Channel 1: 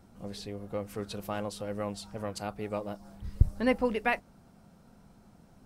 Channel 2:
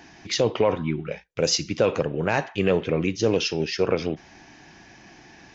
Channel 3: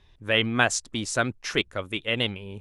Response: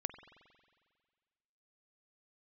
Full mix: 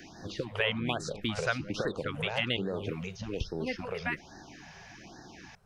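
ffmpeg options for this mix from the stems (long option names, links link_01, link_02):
-filter_complex "[0:a]equalizer=frequency=1700:width=1.5:gain=6,volume=-6.5dB[link_01];[1:a]acrossover=split=1200|3900[link_02][link_03][link_04];[link_02]acompressor=threshold=-28dB:ratio=4[link_05];[link_03]acompressor=threshold=-50dB:ratio=4[link_06];[link_04]acompressor=threshold=-45dB:ratio=4[link_07];[link_05][link_06][link_07]amix=inputs=3:normalize=0,volume=0dB[link_08];[2:a]adelay=300,volume=0dB[link_09];[link_01][link_08][link_09]amix=inputs=3:normalize=0,acrossover=split=1600|4100[link_10][link_11][link_12];[link_10]acompressor=threshold=-30dB:ratio=4[link_13];[link_11]acompressor=threshold=-29dB:ratio=4[link_14];[link_12]acompressor=threshold=-57dB:ratio=4[link_15];[link_13][link_14][link_15]amix=inputs=3:normalize=0,afftfilt=real='re*(1-between(b*sr/1024,250*pow(2700/250,0.5+0.5*sin(2*PI*1.2*pts/sr))/1.41,250*pow(2700/250,0.5+0.5*sin(2*PI*1.2*pts/sr))*1.41))':imag='im*(1-between(b*sr/1024,250*pow(2700/250,0.5+0.5*sin(2*PI*1.2*pts/sr))/1.41,250*pow(2700/250,0.5+0.5*sin(2*PI*1.2*pts/sr))*1.41))':win_size=1024:overlap=0.75"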